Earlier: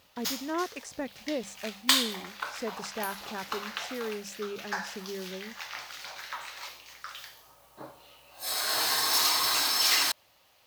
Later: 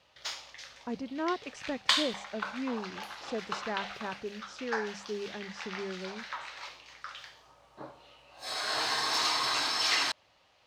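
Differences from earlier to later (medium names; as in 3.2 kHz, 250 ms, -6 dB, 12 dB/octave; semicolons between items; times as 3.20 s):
speech: entry +0.70 s; master: add distance through air 100 m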